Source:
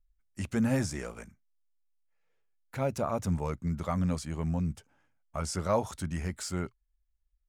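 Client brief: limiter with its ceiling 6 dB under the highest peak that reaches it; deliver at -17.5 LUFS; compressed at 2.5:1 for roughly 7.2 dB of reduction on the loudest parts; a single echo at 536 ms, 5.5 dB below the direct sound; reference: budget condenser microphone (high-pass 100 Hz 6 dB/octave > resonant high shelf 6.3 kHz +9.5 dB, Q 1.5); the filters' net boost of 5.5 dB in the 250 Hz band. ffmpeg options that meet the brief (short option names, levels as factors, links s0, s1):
-af "equalizer=f=250:t=o:g=8,acompressor=threshold=0.0398:ratio=2.5,alimiter=limit=0.0708:level=0:latency=1,highpass=f=100:p=1,highshelf=f=6300:t=q:w=1.5:g=9.5,aecho=1:1:536:0.531,volume=6.31"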